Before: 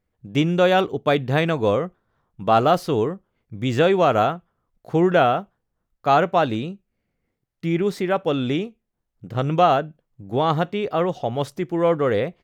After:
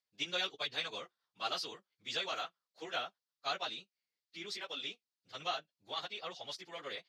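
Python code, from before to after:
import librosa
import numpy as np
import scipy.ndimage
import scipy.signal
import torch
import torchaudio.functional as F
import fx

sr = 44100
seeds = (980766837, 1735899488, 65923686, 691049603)

y = fx.stretch_vocoder_free(x, sr, factor=0.57)
y = fx.bandpass_q(y, sr, hz=4600.0, q=2.9)
y = y * librosa.db_to_amplitude(6.0)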